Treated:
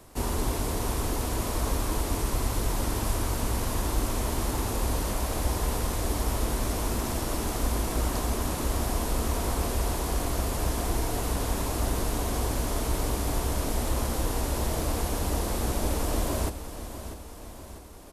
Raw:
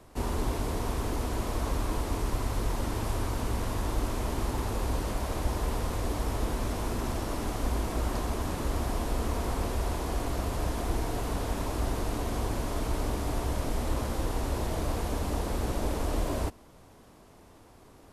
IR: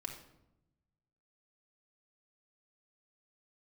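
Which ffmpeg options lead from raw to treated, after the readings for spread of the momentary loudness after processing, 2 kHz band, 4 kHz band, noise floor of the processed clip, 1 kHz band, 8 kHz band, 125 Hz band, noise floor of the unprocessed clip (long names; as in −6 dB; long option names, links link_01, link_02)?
1 LU, +3.0 dB, +5.0 dB, −42 dBFS, +2.0 dB, +8.5 dB, +2.0 dB, −54 dBFS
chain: -af "highshelf=frequency=5600:gain=9.5,aecho=1:1:645|1290|1935|2580|3225|3870:0.266|0.144|0.0776|0.0419|0.0226|0.0122,volume=1.5dB"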